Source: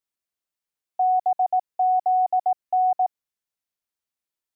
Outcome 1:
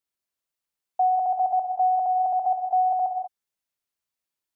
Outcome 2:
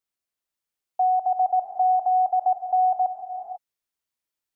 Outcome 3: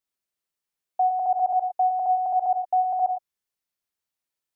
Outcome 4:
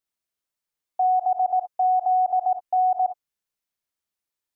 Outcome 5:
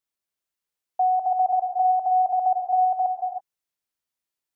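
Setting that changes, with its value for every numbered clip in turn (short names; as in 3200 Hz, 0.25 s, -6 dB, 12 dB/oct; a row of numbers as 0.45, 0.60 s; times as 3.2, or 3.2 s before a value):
non-linear reverb, gate: 220, 520, 130, 80, 350 ms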